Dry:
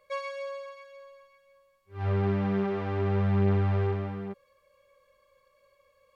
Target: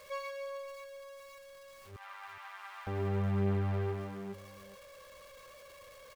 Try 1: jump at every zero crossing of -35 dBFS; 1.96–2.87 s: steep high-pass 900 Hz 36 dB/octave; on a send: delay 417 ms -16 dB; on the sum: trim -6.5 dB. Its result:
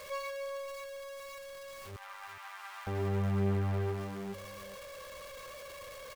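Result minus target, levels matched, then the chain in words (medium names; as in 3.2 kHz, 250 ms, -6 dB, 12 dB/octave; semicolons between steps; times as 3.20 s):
jump at every zero crossing: distortion +7 dB
jump at every zero crossing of -42.5 dBFS; 1.96–2.87 s: steep high-pass 900 Hz 36 dB/octave; on a send: delay 417 ms -16 dB; on the sum: trim -6.5 dB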